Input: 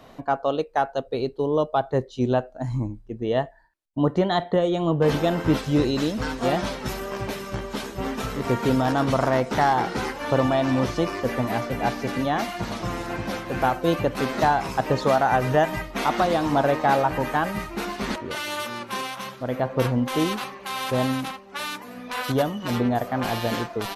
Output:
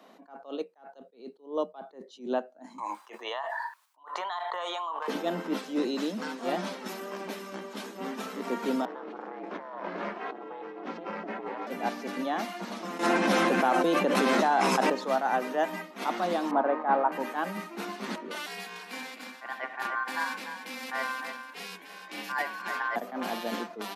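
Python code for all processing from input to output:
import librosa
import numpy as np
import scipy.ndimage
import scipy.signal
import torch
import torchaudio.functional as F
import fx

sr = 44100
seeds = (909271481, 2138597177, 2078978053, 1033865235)

y = fx.chain(x, sr, fx.ladder_highpass(hz=920.0, resonance_pct=65),
    fx.env_flatten(amount_pct=100), at=(2.78, 5.08))
y = fx.chain(y, sr, fx.lowpass(hz=2300.0, slope=12),
    fx.over_compress(threshold_db=-28.0, ratio=-1.0),
    fx.ring_mod(carrier_hz=180.0), at=(8.85, 11.67))
y = fx.chain(y, sr, fx.brickwall_lowpass(high_hz=12000.0),
    fx.notch(hz=4600.0, q=25.0),
    fx.env_flatten(amount_pct=100), at=(12.99, 14.9))
y = fx.chain(y, sr, fx.lowpass(hz=1600.0, slope=12),
    fx.peak_eq(hz=1100.0, db=5.0, octaves=1.2), at=(16.51, 17.12))
y = fx.chain(y, sr, fx.ring_mod(carrier_hz=1300.0),
    fx.echo_single(ms=297, db=-9.0), at=(18.46, 22.96))
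y = scipy.signal.sosfilt(scipy.signal.cheby1(8, 1.0, 180.0, 'highpass', fs=sr, output='sos'), y)
y = fx.attack_slew(y, sr, db_per_s=180.0)
y = y * librosa.db_to_amplitude(-6.0)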